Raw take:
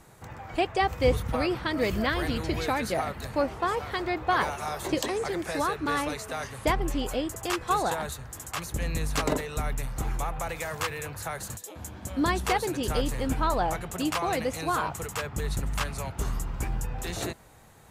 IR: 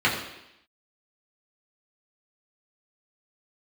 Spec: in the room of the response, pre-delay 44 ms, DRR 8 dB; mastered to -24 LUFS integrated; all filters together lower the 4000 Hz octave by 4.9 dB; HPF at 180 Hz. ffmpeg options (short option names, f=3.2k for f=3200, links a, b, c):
-filter_complex "[0:a]highpass=180,equalizer=f=4k:t=o:g=-6.5,asplit=2[a][b];[1:a]atrim=start_sample=2205,adelay=44[c];[b][c]afir=irnorm=-1:irlink=0,volume=-25dB[d];[a][d]amix=inputs=2:normalize=0,volume=6dB"